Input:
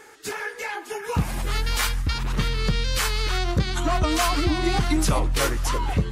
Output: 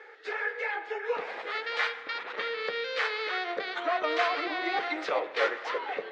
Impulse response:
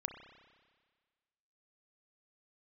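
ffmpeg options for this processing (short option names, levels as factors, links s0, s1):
-filter_complex "[0:a]highpass=f=460:w=0.5412,highpass=f=460:w=1.3066,equalizer=f=480:t=q:w=4:g=6,equalizer=f=1000:t=q:w=4:g=-6,equalizer=f=1900:t=q:w=4:g=4,equalizer=f=2900:t=q:w=4:g=-5,lowpass=f=3500:w=0.5412,lowpass=f=3500:w=1.3066,asplit=2[s0][s1];[1:a]atrim=start_sample=2205[s2];[s1][s2]afir=irnorm=-1:irlink=0,volume=1[s3];[s0][s3]amix=inputs=2:normalize=0,volume=0.447"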